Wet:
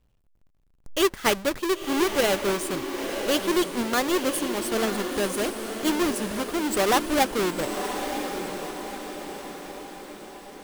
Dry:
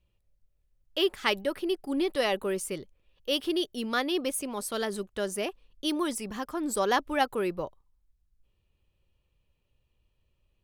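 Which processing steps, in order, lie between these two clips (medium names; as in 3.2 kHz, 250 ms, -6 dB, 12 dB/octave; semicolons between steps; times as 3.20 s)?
square wave that keeps the level; echo that smears into a reverb 995 ms, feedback 53%, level -7 dB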